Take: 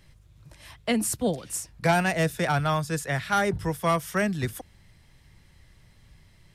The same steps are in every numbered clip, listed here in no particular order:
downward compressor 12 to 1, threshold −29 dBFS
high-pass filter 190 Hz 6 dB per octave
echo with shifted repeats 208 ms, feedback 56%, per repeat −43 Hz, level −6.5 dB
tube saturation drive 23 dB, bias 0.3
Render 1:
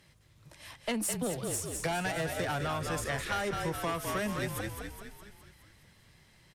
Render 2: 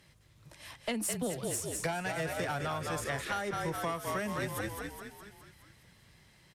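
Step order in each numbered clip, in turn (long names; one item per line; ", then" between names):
high-pass filter, then tube saturation, then echo with shifted repeats, then downward compressor
echo with shifted repeats, then high-pass filter, then downward compressor, then tube saturation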